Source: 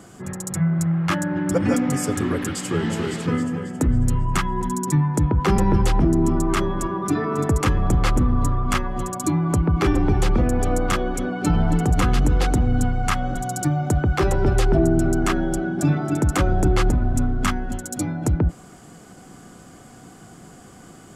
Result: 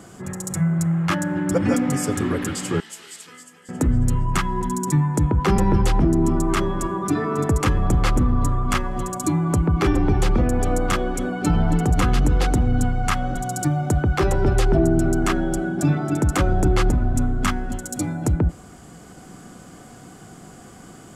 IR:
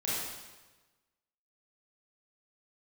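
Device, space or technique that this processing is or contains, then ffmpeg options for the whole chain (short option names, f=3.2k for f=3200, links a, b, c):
ducked reverb: -filter_complex "[0:a]asplit=3[a][b][c];[1:a]atrim=start_sample=2205[d];[b][d]afir=irnorm=-1:irlink=0[e];[c]apad=whole_len=932966[f];[e][f]sidechaincompress=threshold=-40dB:ratio=5:attack=16:release=450,volume=-13dB[g];[a][g]amix=inputs=2:normalize=0,asettb=1/sr,asplit=3[h][i][j];[h]atrim=end=2.804[k];[i]atrim=start=2.8:end=3.69,asetpts=PTS-STARTPTS,afade=t=in:d=0.004:c=qsin,afade=t=out:st=0.886:d=0.004:c=qsin,aderivative[l];[j]atrim=start=3.686[m];[k][l]acrossfade=d=0.004:c1=hsin:c2=qsin[n];[n][m]acrossfade=d=0.004:c1=qsin:c2=hsin"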